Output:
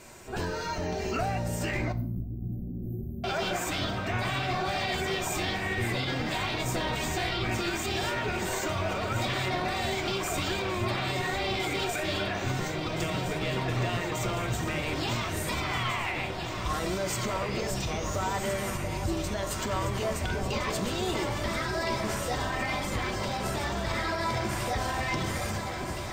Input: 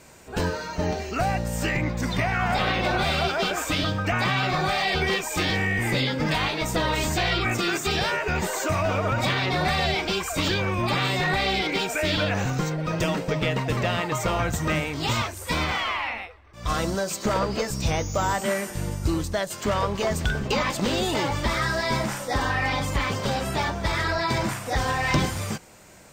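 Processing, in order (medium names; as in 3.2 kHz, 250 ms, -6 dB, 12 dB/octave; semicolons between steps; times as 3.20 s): compression, threshold -27 dBFS, peak gain reduction 9.5 dB; echo whose repeats swap between lows and highs 683 ms, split 940 Hz, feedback 86%, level -7.5 dB; peak limiter -22 dBFS, peak gain reduction 6.5 dB; 1.92–3.24 s: inverse Chebyshev band-stop 1.3–4.8 kHz, stop band 80 dB; reverberation RT60 0.65 s, pre-delay 3 ms, DRR 6.5 dB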